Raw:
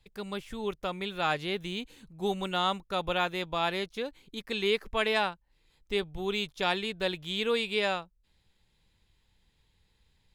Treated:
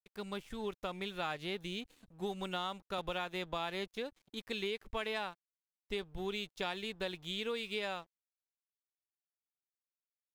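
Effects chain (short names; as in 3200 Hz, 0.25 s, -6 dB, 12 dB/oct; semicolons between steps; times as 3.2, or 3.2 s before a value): compressor, threshold -30 dBFS, peak gain reduction 8.5 dB; crossover distortion -55 dBFS; 2.98–3.91 three-band squash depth 40%; gain -3.5 dB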